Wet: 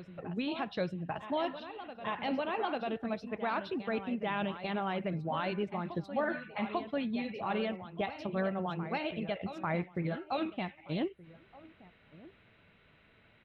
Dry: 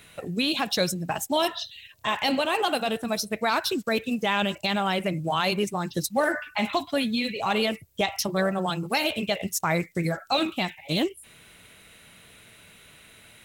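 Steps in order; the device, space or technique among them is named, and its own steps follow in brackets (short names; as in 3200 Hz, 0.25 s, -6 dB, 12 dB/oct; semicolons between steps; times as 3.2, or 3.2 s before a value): LPF 6600 Hz 12 dB/oct; shout across a valley (air absorption 440 m; outdoor echo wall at 210 m, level -20 dB); reverse echo 0.844 s -11 dB; gain -7 dB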